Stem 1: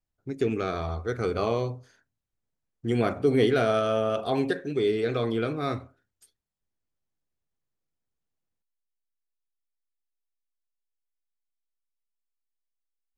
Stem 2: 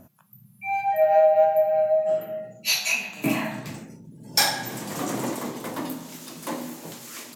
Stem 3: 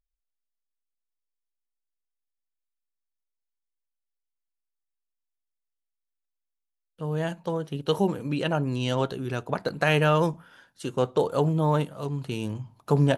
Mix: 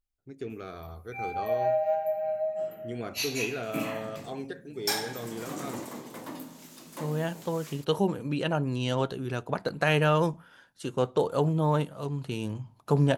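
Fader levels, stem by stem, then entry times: -11.5 dB, -9.0 dB, -2.0 dB; 0.00 s, 0.50 s, 0.00 s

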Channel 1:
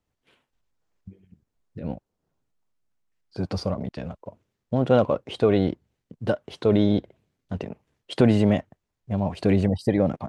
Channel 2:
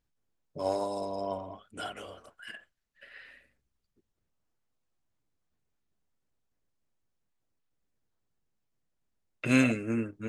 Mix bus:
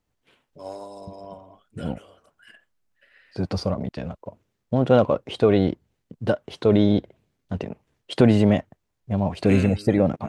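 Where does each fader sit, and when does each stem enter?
+2.0 dB, -6.0 dB; 0.00 s, 0.00 s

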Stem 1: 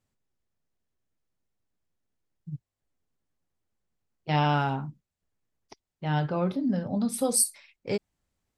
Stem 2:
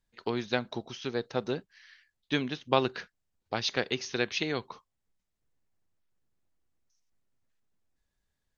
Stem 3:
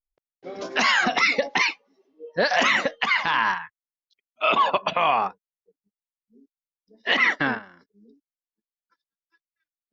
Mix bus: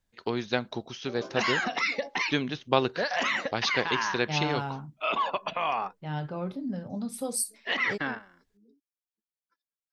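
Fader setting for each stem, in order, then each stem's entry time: -6.5 dB, +1.5 dB, -8.0 dB; 0.00 s, 0.00 s, 0.60 s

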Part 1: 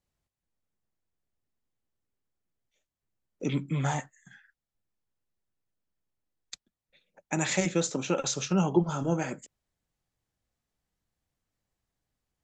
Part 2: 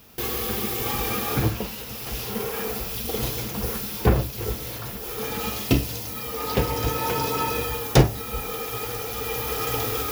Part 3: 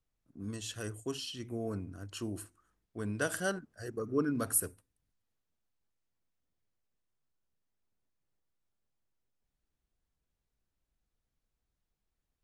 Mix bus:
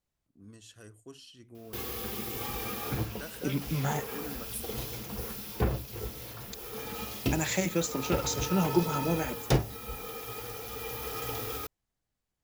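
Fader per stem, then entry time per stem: -2.0 dB, -9.5 dB, -11.0 dB; 0.00 s, 1.55 s, 0.00 s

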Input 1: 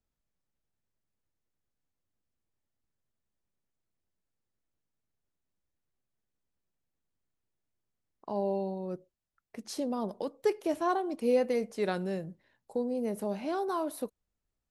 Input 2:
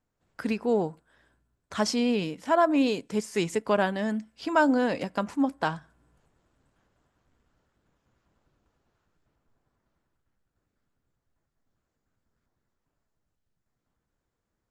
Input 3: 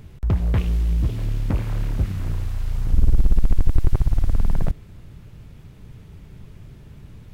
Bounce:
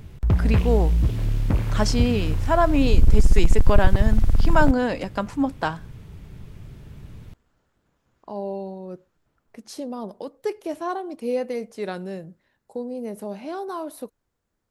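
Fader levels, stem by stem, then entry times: +1.0 dB, +2.5 dB, +1.0 dB; 0.00 s, 0.00 s, 0.00 s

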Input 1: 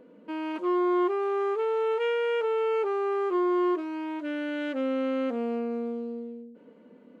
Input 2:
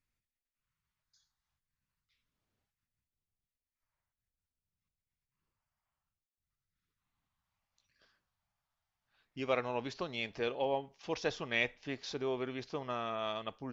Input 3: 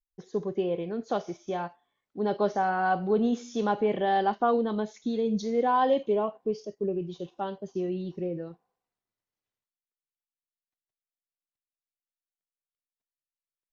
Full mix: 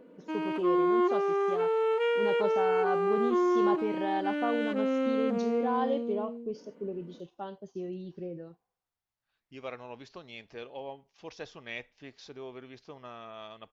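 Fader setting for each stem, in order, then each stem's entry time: -0.5 dB, -7.5 dB, -7.0 dB; 0.00 s, 0.15 s, 0.00 s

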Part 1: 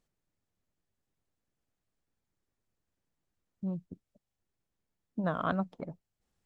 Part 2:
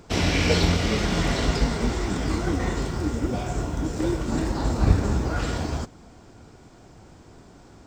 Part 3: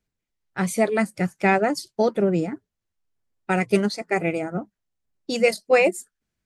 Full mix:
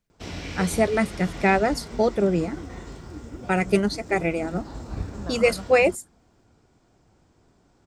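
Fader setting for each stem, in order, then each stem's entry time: -6.0 dB, -12.5 dB, -0.5 dB; 0.00 s, 0.10 s, 0.00 s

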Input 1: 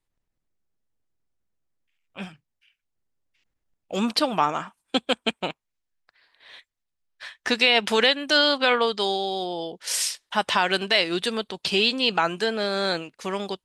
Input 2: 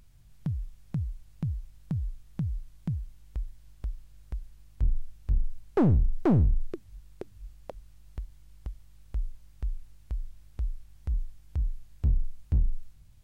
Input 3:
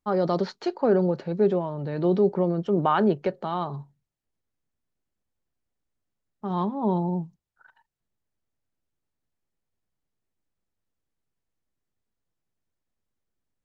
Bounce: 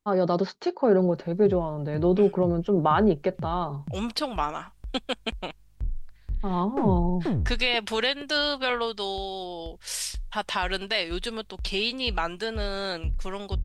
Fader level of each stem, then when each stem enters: -6.0 dB, -4.5 dB, +0.5 dB; 0.00 s, 1.00 s, 0.00 s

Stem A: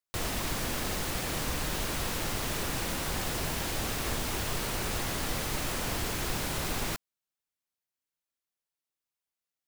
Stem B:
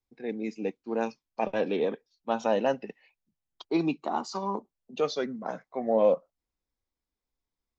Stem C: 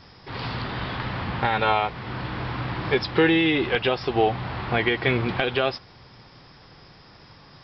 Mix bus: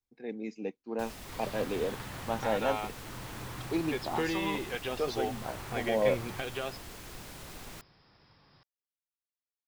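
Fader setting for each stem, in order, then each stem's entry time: -13.5 dB, -5.0 dB, -13.5 dB; 0.85 s, 0.00 s, 1.00 s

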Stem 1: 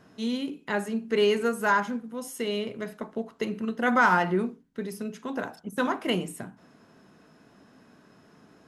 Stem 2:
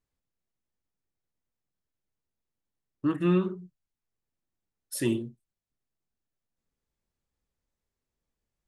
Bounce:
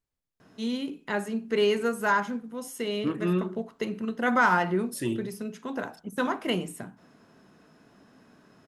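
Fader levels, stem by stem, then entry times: -1.0 dB, -2.5 dB; 0.40 s, 0.00 s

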